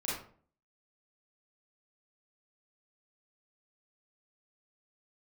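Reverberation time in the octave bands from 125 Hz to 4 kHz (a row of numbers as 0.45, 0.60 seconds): 0.60, 0.60, 0.50, 0.45, 0.35, 0.30 seconds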